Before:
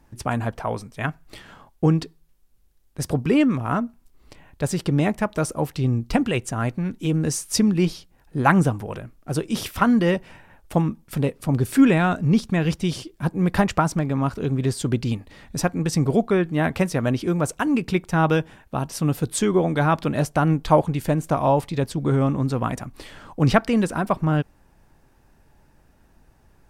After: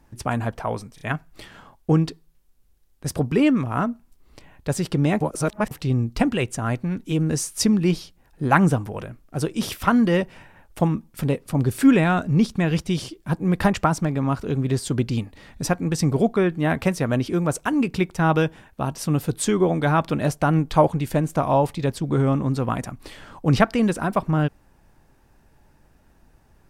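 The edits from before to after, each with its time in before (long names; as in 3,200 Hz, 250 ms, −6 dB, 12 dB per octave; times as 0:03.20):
0:00.95: stutter 0.03 s, 3 plays
0:05.15–0:05.65: reverse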